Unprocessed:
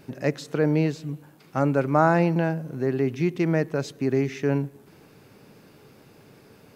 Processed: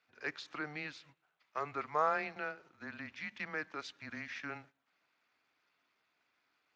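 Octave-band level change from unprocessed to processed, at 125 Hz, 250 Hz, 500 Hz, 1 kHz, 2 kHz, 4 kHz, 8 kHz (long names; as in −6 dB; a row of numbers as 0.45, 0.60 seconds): −30.5, −25.0, −19.0, −10.0, −7.0, −7.0, −15.0 decibels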